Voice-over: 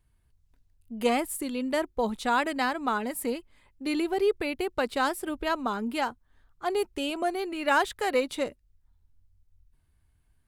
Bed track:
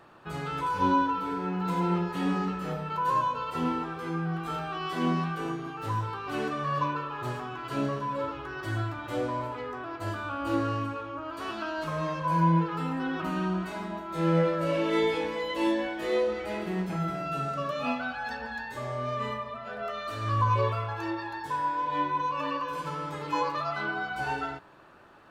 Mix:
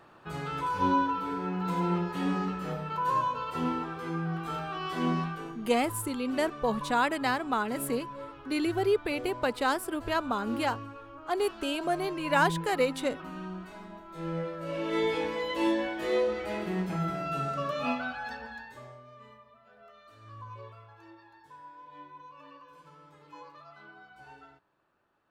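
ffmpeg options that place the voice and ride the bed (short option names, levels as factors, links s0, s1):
-filter_complex "[0:a]adelay=4650,volume=0.891[s0];[1:a]volume=2.51,afade=t=out:st=5.2:d=0.33:silence=0.375837,afade=t=in:st=14.6:d=0.62:silence=0.334965,afade=t=out:st=17.93:d=1.1:silence=0.105925[s1];[s0][s1]amix=inputs=2:normalize=0"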